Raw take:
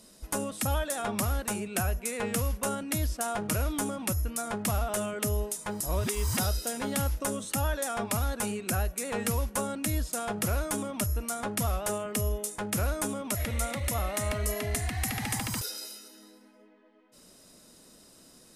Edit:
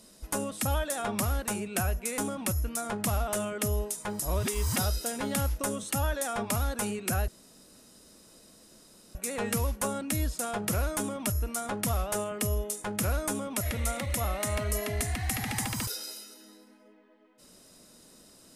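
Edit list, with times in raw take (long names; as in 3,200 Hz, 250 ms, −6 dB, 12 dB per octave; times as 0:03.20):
0:02.18–0:03.79: remove
0:08.89: splice in room tone 1.87 s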